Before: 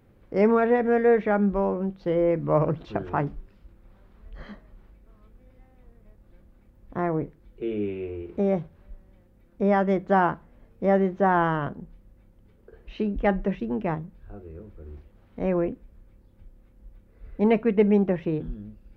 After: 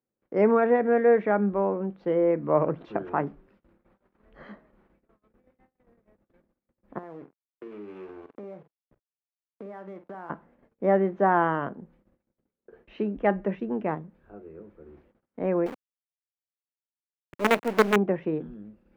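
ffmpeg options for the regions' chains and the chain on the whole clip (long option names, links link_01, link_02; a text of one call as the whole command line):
ffmpeg -i in.wav -filter_complex "[0:a]asettb=1/sr,asplit=3[link_01][link_02][link_03];[link_01]atrim=end=6.984[link_04];[link_02]atrim=start=6.98:end=10.3,asetpts=PTS-STARTPTS,afade=type=in:duration=0.004:curve=qsin,afade=type=out:start_time=3.316:duration=0.004:curve=qsin,aeval=exprs='sgn(val(0))*max(abs(val(0))-0.0119,0)':channel_layout=same,acompressor=threshold=-36dB:ratio=12:attack=3.2:release=140:knee=1:detection=peak,asplit=2[link_05][link_06];[link_06]adelay=48,volume=-12dB[link_07];[link_05][link_07]amix=inputs=2:normalize=0,atrim=end_sample=146412[link_08];[link_03]atrim=start=10.296[link_09];[link_04][link_08]acrossfade=duration=0.004:curve1=hsin:curve2=qsin[link_10];[link_10][link_09]acrossfade=duration=0.004:curve1=qsin:curve2=hsin,asettb=1/sr,asplit=3[link_11][link_12][link_13];[link_11]atrim=end=15.664[link_14];[link_12]atrim=start=15.66:end=17.96,asetpts=PTS-STARTPTS,afade=type=in:duration=0.004:curve=qsin,afade=type=out:start_time=2.296:duration=0.004:curve=qsin,highshelf=frequency=2200:gain=8.5,acrusher=bits=3:dc=4:mix=0:aa=0.000001[link_15];[link_13]atrim=start=17.956[link_16];[link_14][link_15]acrossfade=duration=0.004:curve1=hsin:curve2=qsin[link_17];[link_17][link_16]acrossfade=duration=0.004:curve1=qsin:curve2=hsin,agate=range=-27dB:threshold=-51dB:ratio=16:detection=peak,acrossover=split=170 2600:gain=0.112 1 0.224[link_18][link_19][link_20];[link_18][link_19][link_20]amix=inputs=3:normalize=0" out.wav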